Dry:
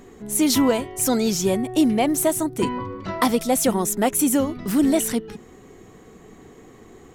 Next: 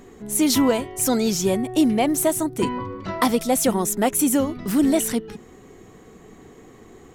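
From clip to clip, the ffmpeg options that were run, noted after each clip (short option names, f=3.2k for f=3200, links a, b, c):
-af anull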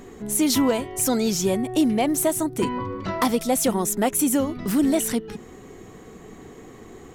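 -filter_complex "[0:a]asplit=2[a][b];[b]acompressor=threshold=-29dB:ratio=6,volume=2dB[c];[a][c]amix=inputs=2:normalize=0,aeval=exprs='0.422*(abs(mod(val(0)/0.422+3,4)-2)-1)':c=same,volume=-4dB"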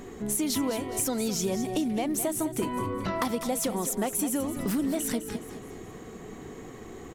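-filter_complex "[0:a]acompressor=threshold=-26dB:ratio=6,asplit=2[a][b];[b]aecho=0:1:209|418|627|836:0.282|0.116|0.0474|0.0194[c];[a][c]amix=inputs=2:normalize=0"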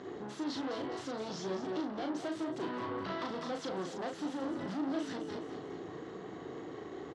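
-filter_complex "[0:a]aeval=exprs='(tanh(63.1*val(0)+0.55)-tanh(0.55))/63.1':c=same,highpass=150,equalizer=f=220:t=q:w=4:g=-9,equalizer=f=320:t=q:w=4:g=4,equalizer=f=2.4k:t=q:w=4:g=-9,lowpass=f=4.7k:w=0.5412,lowpass=f=4.7k:w=1.3066,asplit=2[a][b];[b]adelay=37,volume=-4.5dB[c];[a][c]amix=inputs=2:normalize=0,volume=1dB"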